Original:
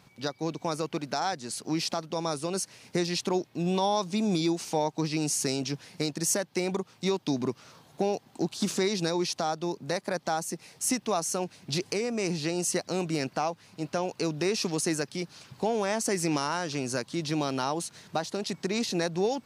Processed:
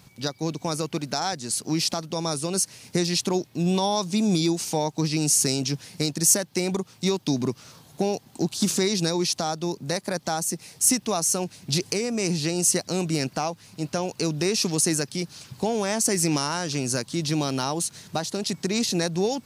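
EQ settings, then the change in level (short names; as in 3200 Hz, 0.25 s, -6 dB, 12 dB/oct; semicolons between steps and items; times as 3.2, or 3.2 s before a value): low shelf 220 Hz +10 dB; high shelf 4300 Hz +12 dB; 0.0 dB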